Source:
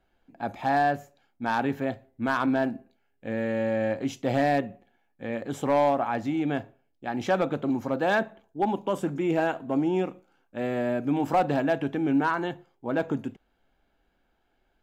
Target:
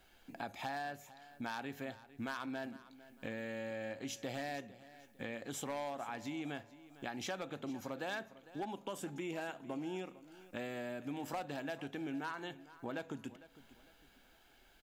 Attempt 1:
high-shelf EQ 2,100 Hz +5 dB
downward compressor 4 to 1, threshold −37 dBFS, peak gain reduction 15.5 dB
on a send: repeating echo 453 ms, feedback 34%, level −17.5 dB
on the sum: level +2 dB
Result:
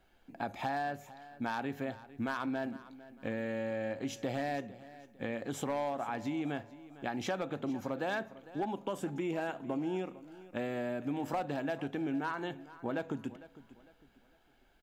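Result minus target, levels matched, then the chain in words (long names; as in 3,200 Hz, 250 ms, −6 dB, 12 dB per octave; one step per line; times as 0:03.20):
downward compressor: peak gain reduction −8 dB; 4,000 Hz band −5.5 dB
high-shelf EQ 2,100 Hz +15 dB
downward compressor 4 to 1, threshold −45.5 dBFS, peak gain reduction 23.5 dB
on a send: repeating echo 453 ms, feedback 34%, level −17.5 dB
on the sum: level +2 dB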